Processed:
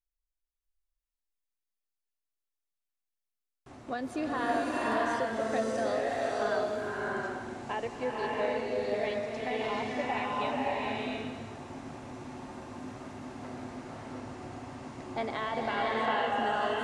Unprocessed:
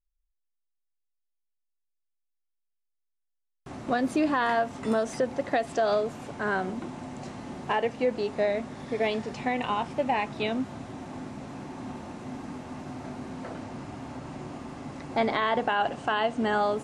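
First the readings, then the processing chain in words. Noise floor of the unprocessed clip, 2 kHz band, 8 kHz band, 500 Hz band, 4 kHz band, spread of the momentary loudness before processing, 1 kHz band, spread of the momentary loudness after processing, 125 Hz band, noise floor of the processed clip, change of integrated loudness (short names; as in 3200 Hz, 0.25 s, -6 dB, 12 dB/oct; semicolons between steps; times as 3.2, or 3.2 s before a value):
-79 dBFS, -2.5 dB, -2.5 dB, -3.5 dB, -3.0 dB, 14 LU, -3.0 dB, 14 LU, -5.0 dB, under -85 dBFS, -3.5 dB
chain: bell 180 Hz -12 dB 0.34 oct; bloom reverb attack 0.67 s, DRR -5 dB; gain -8.5 dB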